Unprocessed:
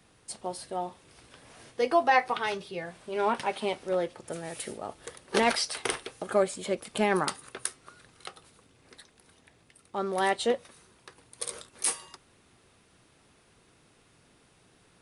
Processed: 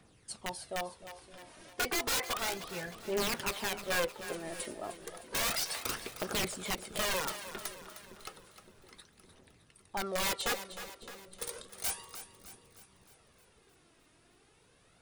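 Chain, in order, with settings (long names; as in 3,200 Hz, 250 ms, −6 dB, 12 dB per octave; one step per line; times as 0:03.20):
wrap-around overflow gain 23 dB
phase shifter 0.32 Hz, delay 3.3 ms, feedback 49%
echo with a time of its own for lows and highs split 440 Hz, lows 563 ms, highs 308 ms, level −12 dB
level −4.5 dB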